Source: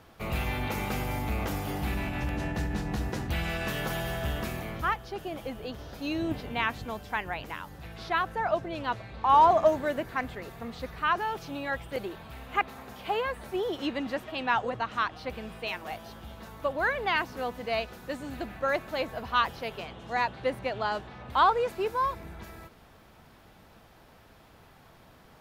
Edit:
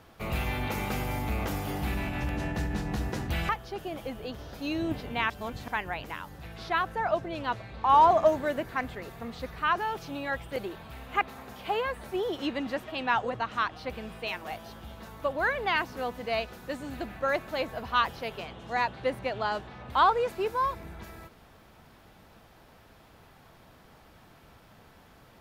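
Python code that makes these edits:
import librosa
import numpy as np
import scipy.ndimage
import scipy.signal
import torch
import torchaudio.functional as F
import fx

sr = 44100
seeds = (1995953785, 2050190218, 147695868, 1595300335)

y = fx.edit(x, sr, fx.cut(start_s=3.49, length_s=1.4),
    fx.reverse_span(start_s=6.7, length_s=0.38), tone=tone)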